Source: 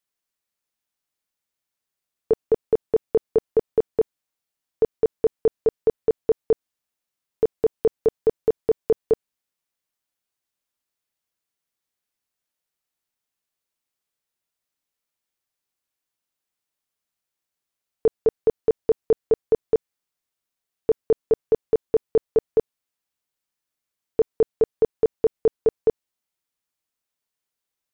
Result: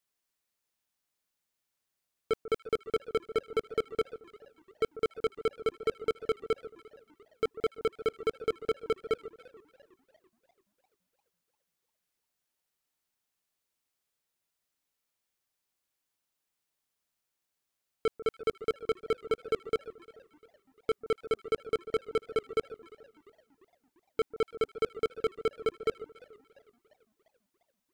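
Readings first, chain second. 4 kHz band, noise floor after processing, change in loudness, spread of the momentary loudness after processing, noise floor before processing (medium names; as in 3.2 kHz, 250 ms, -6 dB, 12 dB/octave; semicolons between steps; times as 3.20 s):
no reading, -85 dBFS, -10.0 dB, 3 LU, -85 dBFS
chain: overload inside the chain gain 24 dB; echo whose repeats swap between lows and highs 144 ms, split 1.3 kHz, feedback 52%, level -14 dB; modulated delay 342 ms, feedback 55%, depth 211 cents, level -24 dB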